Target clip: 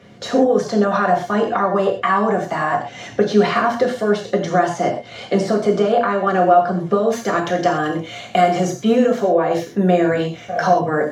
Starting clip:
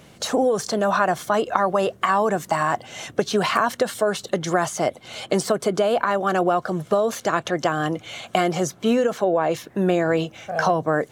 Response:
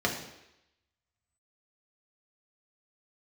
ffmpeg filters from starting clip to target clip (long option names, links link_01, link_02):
-filter_complex "[0:a]asetnsamples=nb_out_samples=441:pad=0,asendcmd='7.12 highshelf g 6.5',highshelf=frequency=7800:gain=-7[link_01];[1:a]atrim=start_sample=2205,atrim=end_sample=6174[link_02];[link_01][link_02]afir=irnorm=-1:irlink=0,volume=-7.5dB"